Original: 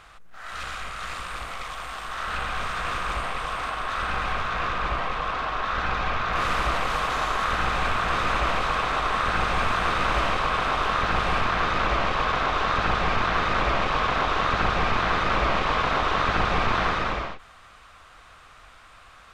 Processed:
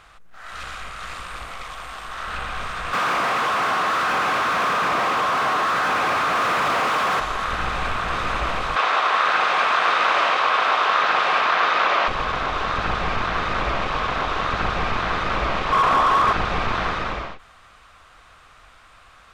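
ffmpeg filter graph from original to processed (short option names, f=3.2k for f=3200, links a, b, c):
-filter_complex "[0:a]asettb=1/sr,asplit=3[a][b][c];[a]atrim=end=2.934[d];[b]atrim=start=2.93:end=7.2,asetpts=PTS-STARTPTS,afade=t=in:d=0.004:c=qsin,afade=t=out:st=4.266:d=0.004:c=qsin,asplit=2[e][f];[f]highpass=f=720:p=1,volume=33dB,asoftclip=type=tanh:threshold=-12.5dB[g];[e][g]amix=inputs=2:normalize=0,lowpass=f=1.5k:p=1,volume=-6dB,highpass=140[h];[c]atrim=start=7.196[i];[d][h]acrossfade=d=0.004:c1=hsin:c2=qsin[j];[j][i]acrossfade=d=0.004:c1=qsin:c2=hsin,asettb=1/sr,asplit=3[k][l][m];[k]atrim=end=8.764[n];[l]atrim=start=8.76:end=12.08,asetpts=PTS-STARTPTS,afade=t=in:d=0.004:c=qsin,afade=t=out:st=3.316:d=0.004:c=qsin,highpass=530,lowpass=5.8k,acontrast=64[o];[m]atrim=start=12.076[p];[n][o]acrossfade=d=0.004:c1=hsin:c2=qsin[q];[q][p]acrossfade=d=0.004:c1=qsin:c2=hsin,asettb=1/sr,asplit=3[r][s][t];[r]atrim=end=15.724[u];[s]atrim=start=15.72:end=16.33,asetpts=PTS-STARTPTS,afade=t=in:d=0.004:c=qsin,afade=t=out:st=0.606:d=0.004:c=qsin,equalizer=f=1.1k:t=o:w=0.25:g=9,asplit=2[v][w];[w]highpass=f=720:p=1,volume=23dB,asoftclip=type=tanh:threshold=-8dB[x];[v][x]amix=inputs=2:normalize=0,lowpass=f=1.1k:p=1,volume=-6dB[y];[t]atrim=start=16.326[z];[u][y]acrossfade=d=0.004:c1=hsin:c2=qsin[aa];[aa][z]acrossfade=d=0.004:c1=qsin:c2=hsin"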